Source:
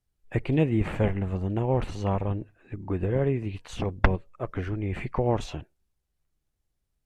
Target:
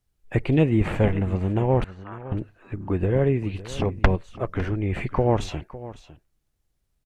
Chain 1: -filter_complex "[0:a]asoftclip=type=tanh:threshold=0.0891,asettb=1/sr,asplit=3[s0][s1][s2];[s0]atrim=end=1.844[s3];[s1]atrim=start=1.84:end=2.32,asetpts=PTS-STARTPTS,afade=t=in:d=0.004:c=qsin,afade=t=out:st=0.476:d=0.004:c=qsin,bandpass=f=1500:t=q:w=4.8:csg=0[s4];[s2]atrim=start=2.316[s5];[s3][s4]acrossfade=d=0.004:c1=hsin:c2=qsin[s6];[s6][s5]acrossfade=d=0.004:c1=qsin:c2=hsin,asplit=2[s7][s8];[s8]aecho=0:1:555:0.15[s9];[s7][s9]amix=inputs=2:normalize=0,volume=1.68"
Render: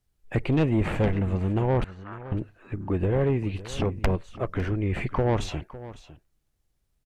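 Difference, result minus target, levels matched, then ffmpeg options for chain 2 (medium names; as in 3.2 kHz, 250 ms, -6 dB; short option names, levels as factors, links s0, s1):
saturation: distortion +12 dB
-filter_complex "[0:a]asoftclip=type=tanh:threshold=0.355,asettb=1/sr,asplit=3[s0][s1][s2];[s0]atrim=end=1.844[s3];[s1]atrim=start=1.84:end=2.32,asetpts=PTS-STARTPTS,afade=t=in:d=0.004:c=qsin,afade=t=out:st=0.476:d=0.004:c=qsin,bandpass=f=1500:t=q:w=4.8:csg=0[s4];[s2]atrim=start=2.316[s5];[s3][s4]acrossfade=d=0.004:c1=hsin:c2=qsin[s6];[s6][s5]acrossfade=d=0.004:c1=qsin:c2=hsin,asplit=2[s7][s8];[s8]aecho=0:1:555:0.15[s9];[s7][s9]amix=inputs=2:normalize=0,volume=1.68"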